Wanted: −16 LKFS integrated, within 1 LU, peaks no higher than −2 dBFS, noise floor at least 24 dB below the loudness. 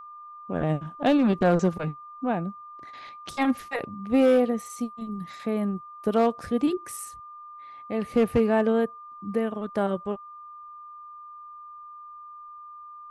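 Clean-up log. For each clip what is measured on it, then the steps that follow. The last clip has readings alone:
share of clipped samples 0.5%; peaks flattened at −14.0 dBFS; interfering tone 1,200 Hz; level of the tone −41 dBFS; integrated loudness −26.0 LKFS; sample peak −14.0 dBFS; target loudness −16.0 LKFS
→ clipped peaks rebuilt −14 dBFS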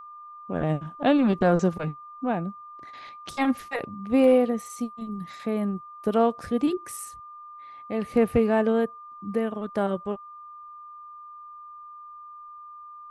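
share of clipped samples 0.0%; interfering tone 1,200 Hz; level of the tone −41 dBFS
→ notch filter 1,200 Hz, Q 30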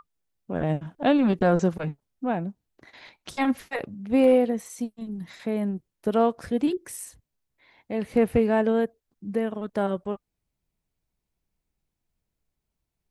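interfering tone none found; integrated loudness −25.5 LKFS; sample peak −10.0 dBFS; target loudness −16.0 LKFS
→ level +9.5 dB
brickwall limiter −2 dBFS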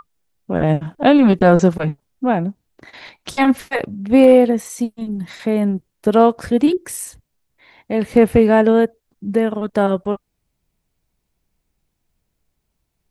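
integrated loudness −16.5 LKFS; sample peak −2.0 dBFS; background noise floor −74 dBFS

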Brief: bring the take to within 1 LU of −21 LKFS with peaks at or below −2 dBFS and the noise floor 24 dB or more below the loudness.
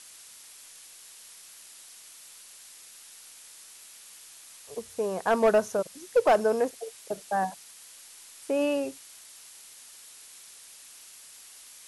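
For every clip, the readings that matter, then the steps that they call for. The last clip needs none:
share of clipped samples 0.3%; peaks flattened at −15.0 dBFS; background noise floor −50 dBFS; target noise floor −52 dBFS; integrated loudness −27.5 LKFS; sample peak −15.0 dBFS; target loudness −21.0 LKFS
→ clipped peaks rebuilt −15 dBFS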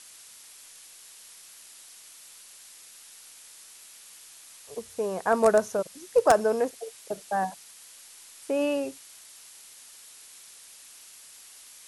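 share of clipped samples 0.0%; background noise floor −50 dBFS; target noise floor −51 dBFS
→ noise reduction from a noise print 6 dB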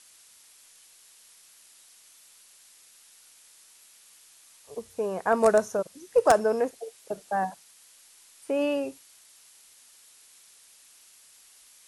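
background noise floor −56 dBFS; integrated loudness −26.5 LKFS; sample peak −6.0 dBFS; target loudness −21.0 LKFS
→ level +5.5 dB
brickwall limiter −2 dBFS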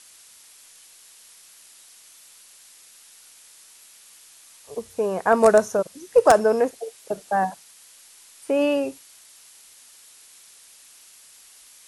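integrated loudness −21.0 LKFS; sample peak −2.0 dBFS; background noise floor −51 dBFS

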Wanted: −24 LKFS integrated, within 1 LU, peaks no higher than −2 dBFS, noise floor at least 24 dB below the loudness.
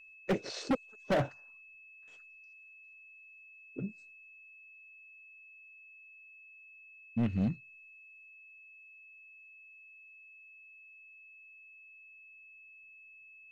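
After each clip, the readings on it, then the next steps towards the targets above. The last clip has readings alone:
share of clipped samples 0.7%; peaks flattened at −24.5 dBFS; interfering tone 2,600 Hz; level of the tone −53 dBFS; integrated loudness −35.0 LKFS; sample peak −24.5 dBFS; target loudness −24.0 LKFS
→ clipped peaks rebuilt −24.5 dBFS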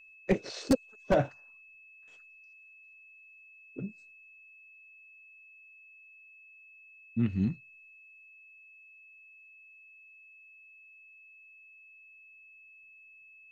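share of clipped samples 0.0%; interfering tone 2,600 Hz; level of the tone −53 dBFS
→ notch filter 2,600 Hz, Q 30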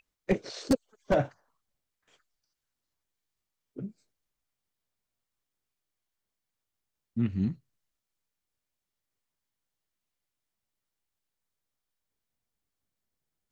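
interfering tone none found; integrated loudness −31.5 LKFS; sample peak −15.5 dBFS; target loudness −24.0 LKFS
→ level +7.5 dB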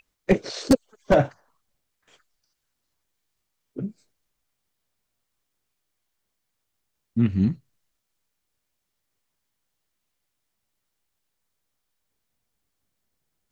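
integrated loudness −24.0 LKFS; sample peak −8.0 dBFS; background noise floor −79 dBFS

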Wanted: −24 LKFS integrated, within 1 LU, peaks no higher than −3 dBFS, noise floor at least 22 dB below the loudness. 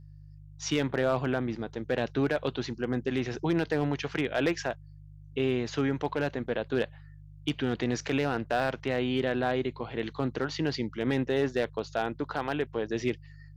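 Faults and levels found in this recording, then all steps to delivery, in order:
share of clipped samples 0.3%; peaks flattened at −18.0 dBFS; mains hum 50 Hz; hum harmonics up to 150 Hz; level of the hum −47 dBFS; integrated loudness −30.5 LKFS; sample peak −18.0 dBFS; target loudness −24.0 LKFS
→ clipped peaks rebuilt −18 dBFS
hum removal 50 Hz, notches 3
level +6.5 dB

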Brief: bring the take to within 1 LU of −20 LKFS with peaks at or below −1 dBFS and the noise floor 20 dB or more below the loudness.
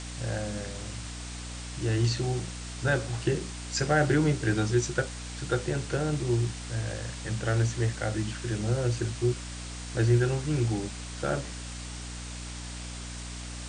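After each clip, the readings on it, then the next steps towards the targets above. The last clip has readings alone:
mains hum 60 Hz; hum harmonics up to 300 Hz; level of the hum −36 dBFS; background noise floor −39 dBFS; target noise floor −50 dBFS; integrated loudness −30.0 LKFS; sample peak −12.0 dBFS; target loudness −20.0 LKFS
→ hum removal 60 Hz, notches 5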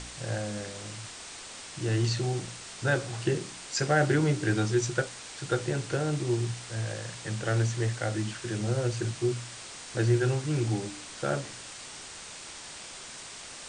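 mains hum none found; background noise floor −44 dBFS; target noise floor −51 dBFS
→ noise reduction from a noise print 7 dB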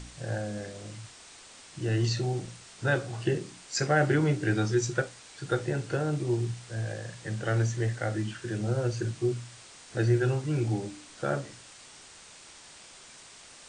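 background noise floor −51 dBFS; integrated loudness −30.0 LKFS; sample peak −12.5 dBFS; target loudness −20.0 LKFS
→ level +10 dB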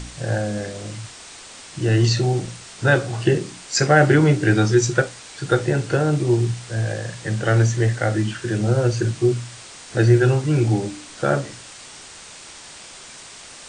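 integrated loudness −20.0 LKFS; sample peak −2.5 dBFS; background noise floor −41 dBFS

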